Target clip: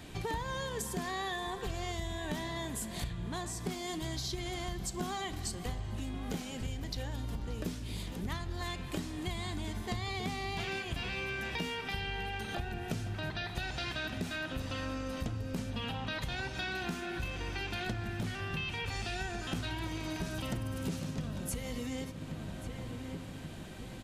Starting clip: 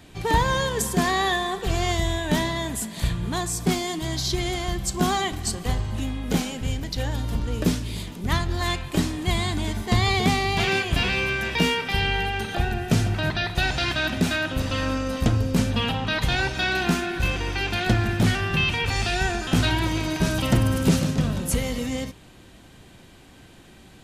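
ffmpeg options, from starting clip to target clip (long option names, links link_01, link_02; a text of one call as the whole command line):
ffmpeg -i in.wav -filter_complex "[0:a]asplit=2[link_01][link_02];[link_02]adelay=1131,lowpass=frequency=2100:poles=1,volume=-17dB,asplit=2[link_03][link_04];[link_04]adelay=1131,lowpass=frequency=2100:poles=1,volume=0.47,asplit=2[link_05][link_06];[link_06]adelay=1131,lowpass=frequency=2100:poles=1,volume=0.47,asplit=2[link_07][link_08];[link_08]adelay=1131,lowpass=frequency=2100:poles=1,volume=0.47[link_09];[link_03][link_05][link_07][link_09]amix=inputs=4:normalize=0[link_10];[link_01][link_10]amix=inputs=2:normalize=0,acompressor=threshold=-36dB:ratio=5,asettb=1/sr,asplit=3[link_11][link_12][link_13];[link_11]atrim=end=3.044[link_14];[link_12]atrim=start=3.04:end=3.66,asetpts=PTS-STARTPTS,afade=type=in:duration=0.004:curve=qsin,afade=type=out:start_time=0.616:duration=0.004:curve=qsin,highshelf=frequency=11000:gain=-10[link_15];[link_13]atrim=start=3.656[link_16];[link_14][link_15]acrossfade=duration=0.004:curve1=hsin:curve2=qsin[link_17];[link_17][link_16]acrossfade=duration=0.004:curve1=qsin:curve2=hsin,asplit=2[link_18][link_19];[link_19]aecho=0:1:578:0.075[link_20];[link_18][link_20]amix=inputs=2:normalize=0" out.wav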